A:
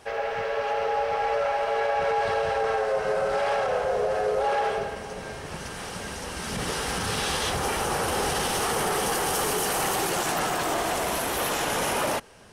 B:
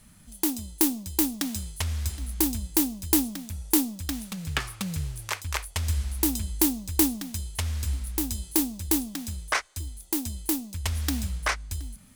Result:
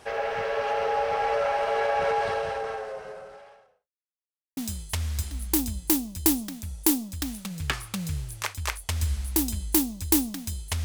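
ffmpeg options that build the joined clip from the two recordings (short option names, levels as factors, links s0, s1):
-filter_complex "[0:a]apad=whole_dur=10.84,atrim=end=10.84,asplit=2[s0][s1];[s0]atrim=end=3.89,asetpts=PTS-STARTPTS,afade=t=out:st=2.1:d=1.79:c=qua[s2];[s1]atrim=start=3.89:end=4.57,asetpts=PTS-STARTPTS,volume=0[s3];[1:a]atrim=start=1.44:end=7.71,asetpts=PTS-STARTPTS,afade=t=in:d=0.004:c=hsin[s4];[s2][s3][s4]concat=n=3:v=0:a=1"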